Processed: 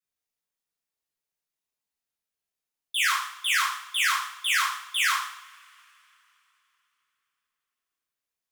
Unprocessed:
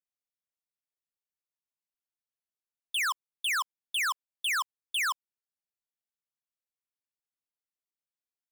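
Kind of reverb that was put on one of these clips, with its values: two-slope reverb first 0.63 s, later 3.4 s, from -26 dB, DRR -7.5 dB; gain -2.5 dB

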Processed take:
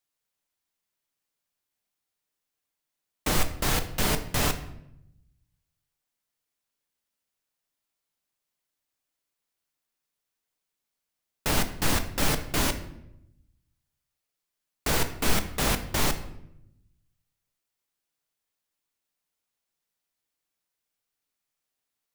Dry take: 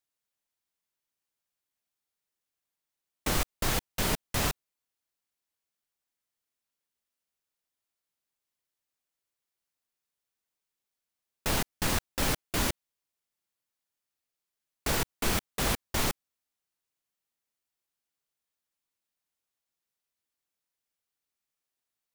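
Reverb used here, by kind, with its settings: shoebox room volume 220 m³, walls mixed, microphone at 0.43 m; gain +2.5 dB

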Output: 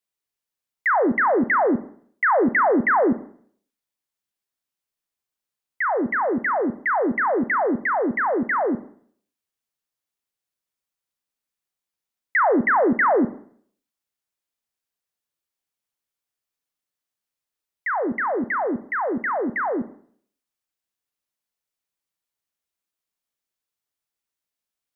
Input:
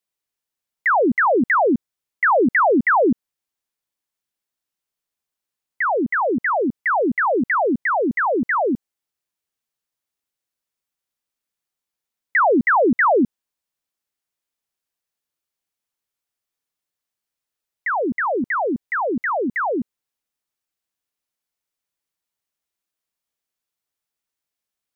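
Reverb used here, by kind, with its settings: Schroeder reverb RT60 0.57 s, combs from 30 ms, DRR 13 dB; gain -2.5 dB

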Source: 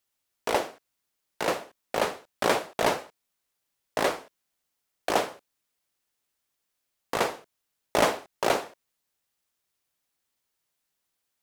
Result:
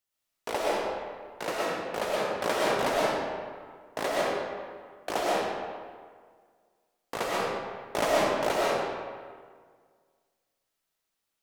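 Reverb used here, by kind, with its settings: digital reverb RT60 1.8 s, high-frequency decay 0.65×, pre-delay 80 ms, DRR -5.5 dB; gain -6.5 dB

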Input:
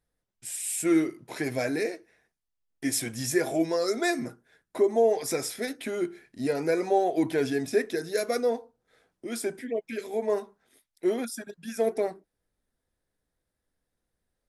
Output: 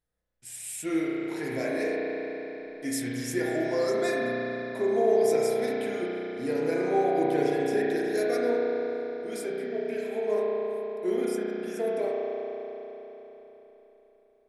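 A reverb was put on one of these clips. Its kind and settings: spring tank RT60 3.9 s, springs 33 ms, chirp 40 ms, DRR -5 dB; gain -6 dB

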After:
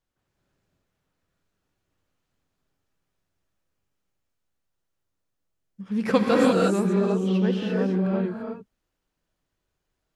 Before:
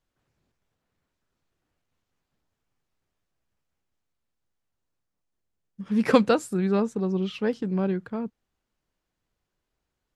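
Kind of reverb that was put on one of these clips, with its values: non-linear reverb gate 0.37 s rising, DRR -3 dB; gain -3 dB

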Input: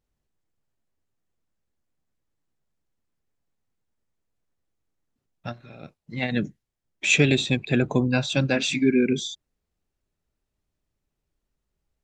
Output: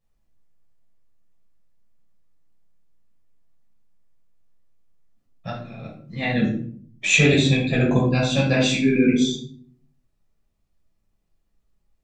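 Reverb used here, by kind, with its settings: shoebox room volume 600 m³, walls furnished, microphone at 6 m; gain -4.5 dB

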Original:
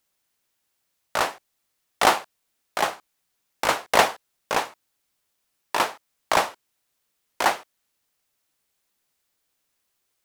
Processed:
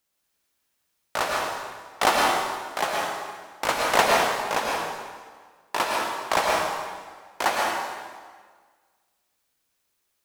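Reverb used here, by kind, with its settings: plate-style reverb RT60 1.6 s, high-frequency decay 0.85×, pre-delay 95 ms, DRR -2 dB; gain -3 dB

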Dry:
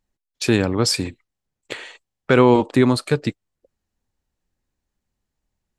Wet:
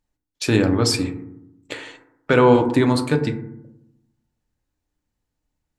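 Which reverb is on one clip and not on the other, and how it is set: FDN reverb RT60 0.81 s, low-frequency decay 1.4×, high-frequency decay 0.3×, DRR 4.5 dB; gain -1.5 dB

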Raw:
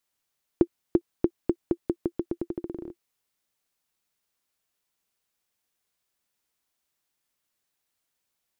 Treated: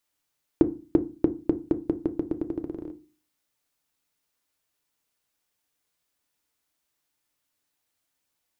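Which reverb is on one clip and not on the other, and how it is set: FDN reverb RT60 0.32 s, low-frequency decay 1.45×, high-frequency decay 0.5×, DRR 8.5 dB; gain +1 dB

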